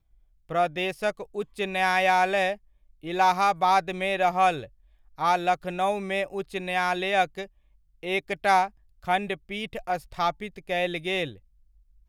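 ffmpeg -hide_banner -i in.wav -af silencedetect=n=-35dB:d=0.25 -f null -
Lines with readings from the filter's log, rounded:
silence_start: 0.00
silence_end: 0.50 | silence_duration: 0.50
silence_start: 2.54
silence_end: 3.04 | silence_duration: 0.50
silence_start: 4.65
silence_end: 5.18 | silence_duration: 0.54
silence_start: 7.45
silence_end: 8.03 | silence_duration: 0.58
silence_start: 8.68
silence_end: 9.05 | silence_duration: 0.37
silence_start: 11.32
silence_end: 12.08 | silence_duration: 0.76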